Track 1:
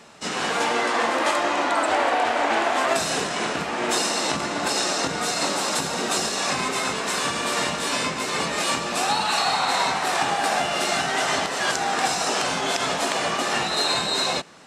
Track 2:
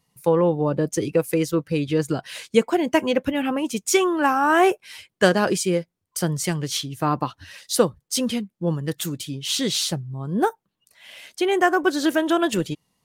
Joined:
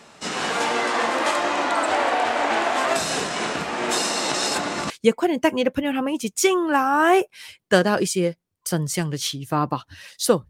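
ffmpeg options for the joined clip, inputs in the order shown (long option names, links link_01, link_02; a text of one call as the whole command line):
ffmpeg -i cue0.wav -i cue1.wav -filter_complex "[0:a]apad=whole_dur=10.49,atrim=end=10.49,asplit=2[link_01][link_02];[link_01]atrim=end=4.342[link_03];[link_02]atrim=start=4.338:end=4.902,asetpts=PTS-STARTPTS,areverse[link_04];[1:a]atrim=start=2.398:end=7.99[link_05];[link_03][link_04]acrossfade=duration=0.004:curve1=hsin:curve2=hsin[link_06];[link_06][link_05]acrossfade=duration=0.004:curve1=hsin:curve2=hsin" out.wav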